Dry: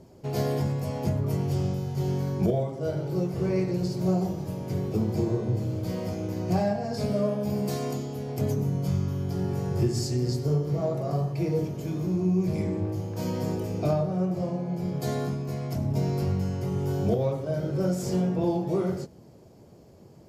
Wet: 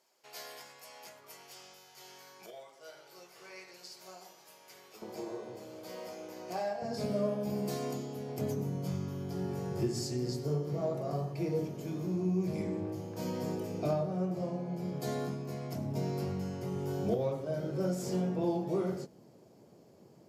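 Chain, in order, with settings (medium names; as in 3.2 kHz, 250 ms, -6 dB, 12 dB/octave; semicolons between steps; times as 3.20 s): high-pass 1.4 kHz 12 dB/octave, from 5.02 s 540 Hz, from 6.82 s 160 Hz; trim -5 dB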